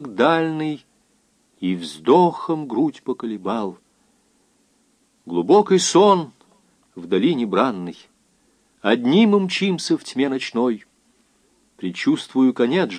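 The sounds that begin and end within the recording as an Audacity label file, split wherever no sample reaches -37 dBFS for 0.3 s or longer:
1.620000	3.750000	sound
5.270000	6.410000	sound
6.970000	8.010000	sound
8.840000	10.820000	sound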